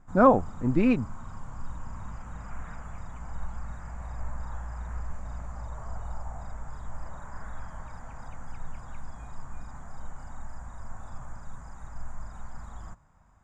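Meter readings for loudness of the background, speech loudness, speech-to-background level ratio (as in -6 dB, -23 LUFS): -43.0 LUFS, -23.5 LUFS, 19.5 dB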